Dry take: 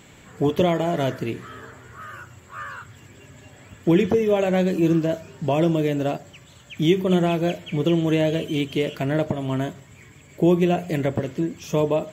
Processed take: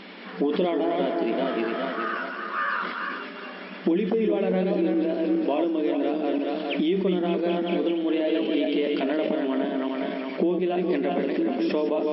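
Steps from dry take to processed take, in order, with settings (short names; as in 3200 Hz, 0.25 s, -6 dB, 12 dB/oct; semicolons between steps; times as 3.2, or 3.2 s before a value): regenerating reverse delay 0.206 s, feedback 54%, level -4 dB; dynamic EQ 310 Hz, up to +4 dB, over -29 dBFS, Q 1; compressor 10:1, threshold -29 dBFS, peak gain reduction 21 dB; FFT band-pass 180–5500 Hz; sustainer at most 42 dB/s; gain +8 dB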